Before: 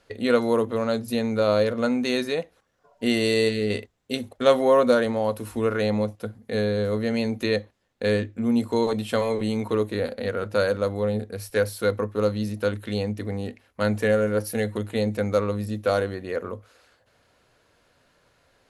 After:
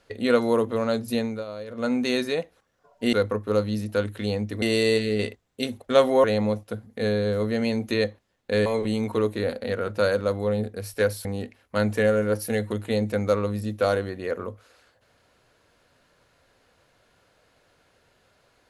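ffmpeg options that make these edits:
-filter_complex "[0:a]asplit=8[s0][s1][s2][s3][s4][s5][s6][s7];[s0]atrim=end=1.45,asetpts=PTS-STARTPTS,afade=t=out:st=1.18:d=0.27:silence=0.16788[s8];[s1]atrim=start=1.45:end=1.67,asetpts=PTS-STARTPTS,volume=0.168[s9];[s2]atrim=start=1.67:end=3.132,asetpts=PTS-STARTPTS,afade=t=in:d=0.27:silence=0.16788[s10];[s3]atrim=start=11.808:end=13.302[s11];[s4]atrim=start=3.128:end=4.752[s12];[s5]atrim=start=5.758:end=8.182[s13];[s6]atrim=start=9.218:end=11.812[s14];[s7]atrim=start=13.298[s15];[s8][s9][s10]concat=n=3:v=0:a=1[s16];[s16][s11]acrossfade=d=0.004:c1=hsin:c2=hsin[s17];[s17][s12]acrossfade=d=0.004:c1=hsin:c2=hsin[s18];[s18][s13]acrossfade=d=0.004:c1=hsin:c2=hsin[s19];[s19][s14]acrossfade=d=0.004:c1=hsin:c2=hsin[s20];[s20][s15]acrossfade=d=0.004:c1=hsin:c2=hsin"

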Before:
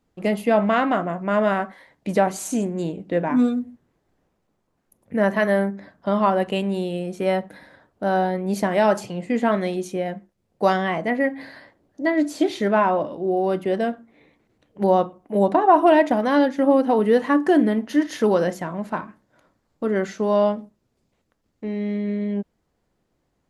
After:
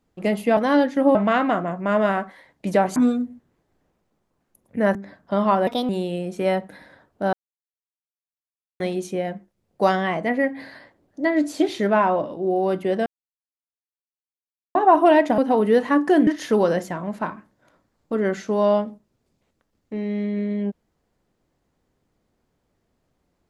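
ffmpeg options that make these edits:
-filter_complex "[0:a]asplit=13[s0][s1][s2][s3][s4][s5][s6][s7][s8][s9][s10][s11][s12];[s0]atrim=end=0.572[s13];[s1]atrim=start=16.188:end=16.772[s14];[s2]atrim=start=0.568:end=2.382[s15];[s3]atrim=start=3.328:end=5.322[s16];[s4]atrim=start=5.698:end=6.424[s17];[s5]atrim=start=6.42:end=6.7,asetpts=PTS-STARTPTS,asetrate=56007,aresample=44100[s18];[s6]atrim=start=6.696:end=8.14,asetpts=PTS-STARTPTS,afade=t=out:st=1.44:d=0.004:c=hsin[s19];[s7]atrim=start=8.14:end=9.61,asetpts=PTS-STARTPTS,volume=0[s20];[s8]atrim=start=9.61:end=13.87,asetpts=PTS-STARTPTS,afade=t=in:d=0.004:c=hsin,afade=t=out:st=4.256:d=0.004:c=hsin[s21];[s9]atrim=start=13.87:end=15.56,asetpts=PTS-STARTPTS,volume=0[s22];[s10]atrim=start=15.56:end=16.192,asetpts=PTS-STARTPTS,afade=t=in:d=0.004:c=hsin[s23];[s11]atrim=start=16.768:end=17.662[s24];[s12]atrim=start=17.978[s25];[s13][s14]acrossfade=d=0.004:c1=hsin:c2=hsin[s26];[s26][s15]acrossfade=d=0.004:c1=hsin:c2=hsin[s27];[s27][s16]acrossfade=d=0.004:c1=hsin:c2=hsin[s28];[s28][s17]acrossfade=d=0.004:c1=hsin:c2=hsin[s29];[s29][s18]acrossfade=d=0.004:c1=hsin:c2=hsin[s30];[s19][s20][s21][s22][s23]concat=n=5:v=0:a=1[s31];[s30][s31]acrossfade=d=0.004:c1=hsin:c2=hsin[s32];[s32][s24]acrossfade=d=0.004:c1=hsin:c2=hsin[s33];[s33][s25]acrossfade=d=0.004:c1=hsin:c2=hsin"

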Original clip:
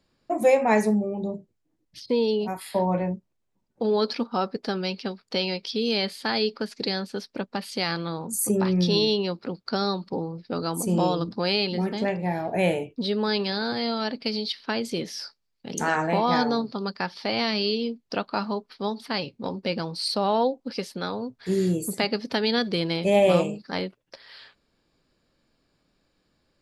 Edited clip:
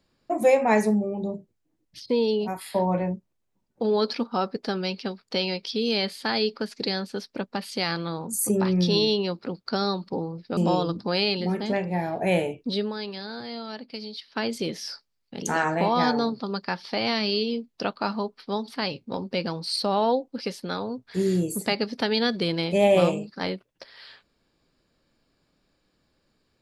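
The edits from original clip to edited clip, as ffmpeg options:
-filter_complex "[0:a]asplit=4[s0][s1][s2][s3];[s0]atrim=end=10.572[s4];[s1]atrim=start=10.888:end=13.25,asetpts=PTS-STARTPTS,afade=t=out:st=2.172:d=0.19:c=qsin:silence=0.375837[s5];[s2]atrim=start=13.25:end=14.59,asetpts=PTS-STARTPTS,volume=0.376[s6];[s3]atrim=start=14.59,asetpts=PTS-STARTPTS,afade=t=in:d=0.19:c=qsin:silence=0.375837[s7];[s5][s6][s7]concat=n=3:v=0:a=1[s8];[s4][s8]acrossfade=d=0.004:c1=hsin:c2=hsin"

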